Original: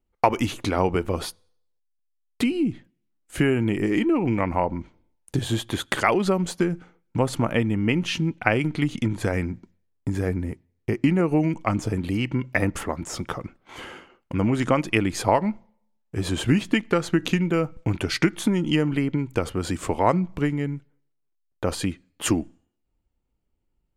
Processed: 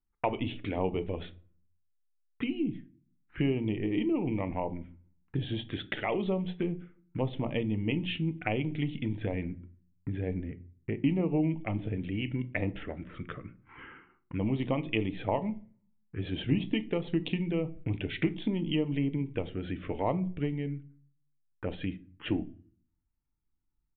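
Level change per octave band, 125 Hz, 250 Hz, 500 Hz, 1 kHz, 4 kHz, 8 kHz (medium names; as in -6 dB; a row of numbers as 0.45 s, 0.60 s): -7.0 dB, -7.5 dB, -8.5 dB, -12.5 dB, -9.0 dB, under -40 dB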